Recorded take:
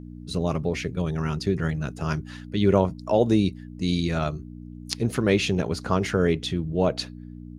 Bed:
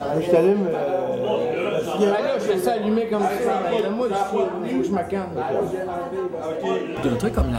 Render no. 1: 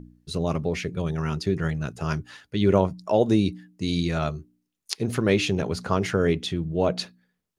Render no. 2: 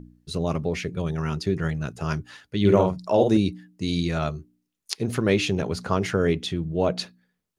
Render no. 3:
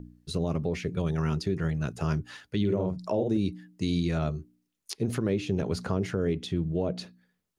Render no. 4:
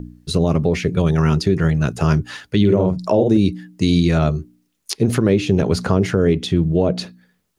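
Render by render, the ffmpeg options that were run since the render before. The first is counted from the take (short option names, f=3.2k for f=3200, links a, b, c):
-af "bandreject=f=60:t=h:w=4,bandreject=f=120:t=h:w=4,bandreject=f=180:t=h:w=4,bandreject=f=240:t=h:w=4,bandreject=f=300:t=h:w=4"
-filter_complex "[0:a]asettb=1/sr,asplit=3[a][b][c];[a]atrim=end=2.604[d];[b]atrim=start=2.6:end=3.37,asetpts=PTS-STARTPTS,afade=t=in:d=0.004:c=qsin,afade=t=out:st=0.766:d=0.004:c=qsin,asplit=2[e][f];[f]adelay=49,volume=-4dB[g];[e][g]amix=inputs=2:normalize=0,atrim=end_sample=33957[h];[c]atrim=start=3.366[i];[d][h]acrossfade=d=0.004:c1=hsin:c2=qsin[j];[j][i]acrossfade=d=0.004:c1=qsin:c2=hsin"
-filter_complex "[0:a]acrossover=split=550[a][b];[b]acompressor=threshold=-35dB:ratio=6[c];[a][c]amix=inputs=2:normalize=0,alimiter=limit=-17dB:level=0:latency=1:release=250"
-af "volume=12dB"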